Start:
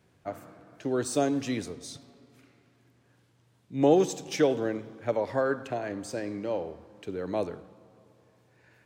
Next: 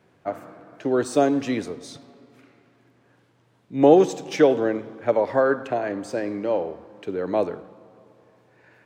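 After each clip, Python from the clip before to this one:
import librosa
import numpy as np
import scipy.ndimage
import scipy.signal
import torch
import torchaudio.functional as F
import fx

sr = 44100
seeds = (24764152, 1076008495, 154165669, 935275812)

y = fx.highpass(x, sr, hz=270.0, slope=6)
y = fx.high_shelf(y, sr, hz=3300.0, db=-12.0)
y = y * librosa.db_to_amplitude(9.0)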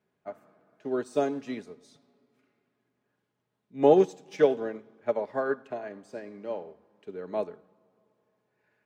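y = x + 0.44 * np.pad(x, (int(4.8 * sr / 1000.0), 0))[:len(x)]
y = fx.upward_expand(y, sr, threshold_db=-36.0, expansion=1.5)
y = y * librosa.db_to_amplitude(-5.0)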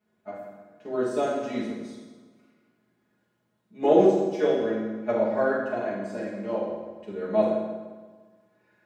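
y = fx.rider(x, sr, range_db=4, speed_s=0.5)
y = fx.rev_fdn(y, sr, rt60_s=1.3, lf_ratio=1.2, hf_ratio=0.8, size_ms=28.0, drr_db=-8.0)
y = y * librosa.db_to_amplitude(-6.0)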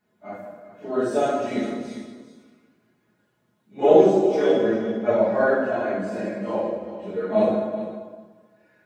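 y = fx.phase_scramble(x, sr, seeds[0], window_ms=100)
y = y + 10.0 ** (-13.0 / 20.0) * np.pad(y, (int(395 * sr / 1000.0), 0))[:len(y)]
y = y * librosa.db_to_amplitude(4.0)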